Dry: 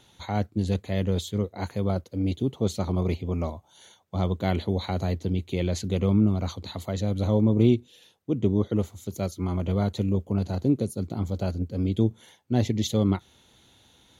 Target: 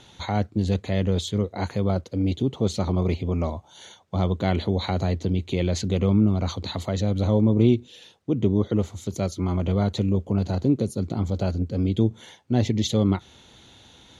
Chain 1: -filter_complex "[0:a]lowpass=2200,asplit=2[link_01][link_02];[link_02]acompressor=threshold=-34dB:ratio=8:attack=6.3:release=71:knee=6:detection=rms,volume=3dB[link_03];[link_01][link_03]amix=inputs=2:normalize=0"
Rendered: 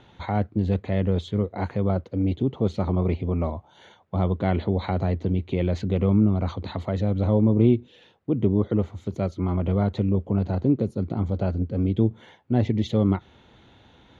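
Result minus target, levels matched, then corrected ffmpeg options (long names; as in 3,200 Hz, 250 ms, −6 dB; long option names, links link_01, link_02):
8,000 Hz band −17.5 dB
-filter_complex "[0:a]lowpass=7400,asplit=2[link_01][link_02];[link_02]acompressor=threshold=-34dB:ratio=8:attack=6.3:release=71:knee=6:detection=rms,volume=3dB[link_03];[link_01][link_03]amix=inputs=2:normalize=0"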